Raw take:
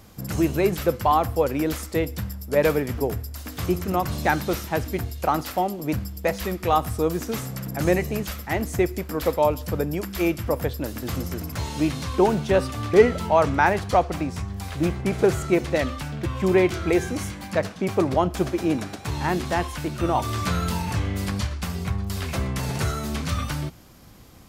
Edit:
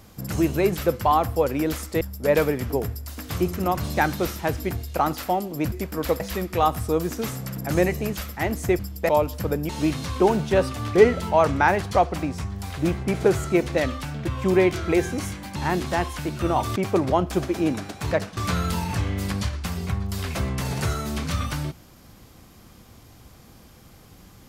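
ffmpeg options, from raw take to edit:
-filter_complex "[0:a]asplit=11[a][b][c][d][e][f][g][h][i][j][k];[a]atrim=end=2.012[l];[b]atrim=start=2.288:end=6.002[m];[c]atrim=start=8.888:end=9.372[n];[d]atrim=start=6.298:end=8.892[o];[e]atrim=start=5.998:end=6.302[p];[f]atrim=start=9.368:end=9.972[q];[g]atrim=start=11.668:end=17.542[r];[h]atrim=start=19.148:end=20.352[s];[i]atrim=start=17.798:end=19.152[t];[j]atrim=start=17.538:end=17.802[u];[k]atrim=start=20.348[v];[l][m]acrossfade=d=0.004:c1=hsin:c2=hsin[w];[w][n]acrossfade=d=0.004:c1=hsin:c2=hsin[x];[x][o]acrossfade=d=0.004:c1=hsin:c2=hsin[y];[y][p]acrossfade=d=0.004:c1=hsin:c2=hsin[z];[z][q]acrossfade=d=0.004:c1=hsin:c2=hsin[aa];[aa][r]acrossfade=d=0.004:c1=hsin:c2=hsin[ab];[ab][s]acrossfade=d=0.004:c1=hsin:c2=hsin[ac];[ac][t]acrossfade=d=0.004:c1=hsin:c2=hsin[ad];[ad][u]acrossfade=d=0.004:c1=hsin:c2=hsin[ae];[ae][v]acrossfade=d=0.004:c1=hsin:c2=hsin"

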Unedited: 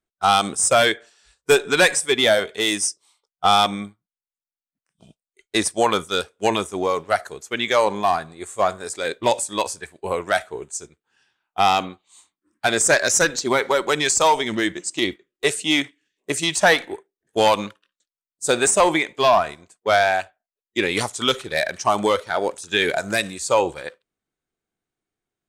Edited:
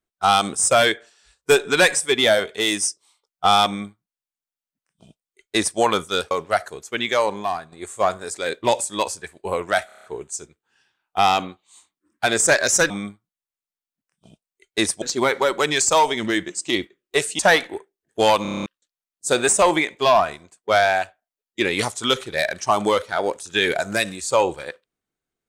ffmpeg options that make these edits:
-filter_complex "[0:a]asplit=20[a][b][c][d][e][f][g][h][i][j][k][l][m][n][o][p][q][r][s][t];[a]atrim=end=6.312[u];[b]atrim=start=6.898:end=8.31,asetpts=PTS-STARTPTS,afade=t=out:st=0.662:d=0.75:silence=0.334965[v];[c]atrim=start=8.31:end=10.482,asetpts=PTS-STARTPTS,afade=t=in:d=0.004:c=hsin:silence=0.334965[w];[d]atrim=start=10.448:end=10.482[x];[e]atrim=start=10.448:end=10.482[y];[f]atrim=start=10.448:end=10.482[z];[g]atrim=start=10.448:end=10.482[aa];[h]atrim=start=10.448:end=10.482[ab];[i]atrim=start=10.448:end=13.312[ac];[j]atrim=start=3.668:end=5.792[ad];[k]atrim=start=13.308:end=15.682[ae];[l]atrim=start=16.568:end=17.632[af];[m]atrim=start=17.598:end=17.632[ag];[n]atrim=start=17.598:end=17.632[ah];[o]atrim=start=17.598:end=17.632[ai];[p]atrim=start=17.598:end=17.632[aj];[q]atrim=start=17.598:end=17.632[ak];[r]atrim=start=17.598:end=17.632[al];[s]atrim=start=17.598:end=17.632[am];[t]atrim=start=17.838[an];[v][w]concat=n=2:v=0:a=1[ao];[u][ao]acrossfade=d=0.004:c1=hsin:c2=hsin[ap];[ap][x]acrossfade=d=0.004:c1=hsin:c2=hsin[aq];[aq][y]acrossfade=d=0.004:c1=hsin:c2=hsin[ar];[ar][z]acrossfade=d=0.004:c1=hsin:c2=hsin[as];[as][aa]acrossfade=d=0.004:c1=hsin:c2=hsin[at];[at][ab]acrossfade=d=0.004:c1=hsin:c2=hsin[au];[au][ac]acrossfade=d=0.004:c1=hsin:c2=hsin[av];[av][ad]acrossfade=d=0.004:c1=hsin:c2=hsin[aw];[aw][ae]acrossfade=d=0.004:c1=hsin:c2=hsin[ax];[ax][af]acrossfade=d=0.004:c1=hsin:c2=hsin[ay];[ay][ag]acrossfade=d=0.004:c1=hsin:c2=hsin[az];[az][ah]acrossfade=d=0.004:c1=hsin:c2=hsin[ba];[ba][ai]acrossfade=d=0.004:c1=hsin:c2=hsin[bb];[bb][aj]acrossfade=d=0.004:c1=hsin:c2=hsin[bc];[bc][ak]acrossfade=d=0.004:c1=hsin:c2=hsin[bd];[bd][al]acrossfade=d=0.004:c1=hsin:c2=hsin[be];[be][am]acrossfade=d=0.004:c1=hsin:c2=hsin[bf];[bf][an]acrossfade=d=0.004:c1=hsin:c2=hsin"

